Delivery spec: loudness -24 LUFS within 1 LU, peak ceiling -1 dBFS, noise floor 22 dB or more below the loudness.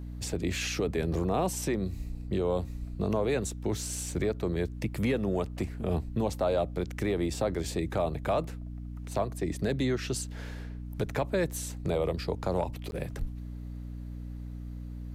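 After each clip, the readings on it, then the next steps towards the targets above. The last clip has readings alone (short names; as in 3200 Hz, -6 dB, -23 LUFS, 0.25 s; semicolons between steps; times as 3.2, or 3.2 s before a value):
dropouts 1; longest dropout 11 ms; hum 60 Hz; harmonics up to 300 Hz; hum level -37 dBFS; loudness -32.0 LUFS; peak -17.0 dBFS; loudness target -24.0 LUFS
-> interpolate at 12.91, 11 ms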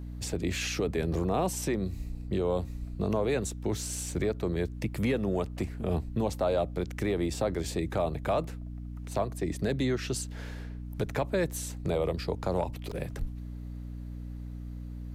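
dropouts 0; hum 60 Hz; harmonics up to 300 Hz; hum level -37 dBFS
-> de-hum 60 Hz, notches 5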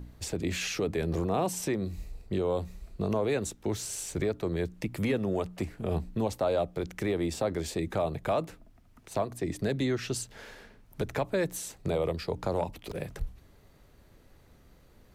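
hum none; loudness -32.0 LUFS; peak -17.5 dBFS; loudness target -24.0 LUFS
-> gain +8 dB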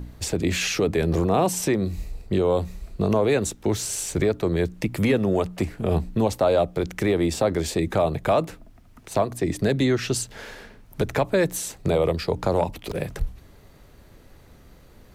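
loudness -24.0 LUFS; peak -9.5 dBFS; noise floor -51 dBFS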